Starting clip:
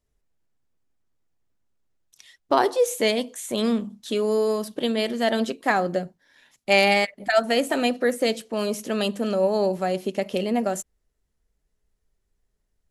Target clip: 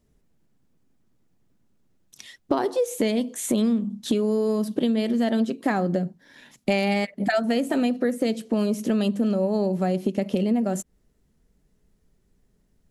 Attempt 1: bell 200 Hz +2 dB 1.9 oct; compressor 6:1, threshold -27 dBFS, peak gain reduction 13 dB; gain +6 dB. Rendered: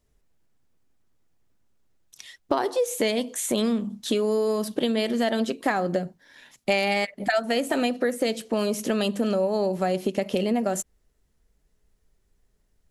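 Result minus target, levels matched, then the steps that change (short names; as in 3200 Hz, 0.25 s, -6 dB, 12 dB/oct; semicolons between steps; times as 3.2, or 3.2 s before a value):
250 Hz band -3.0 dB
change: bell 200 Hz +12.5 dB 1.9 oct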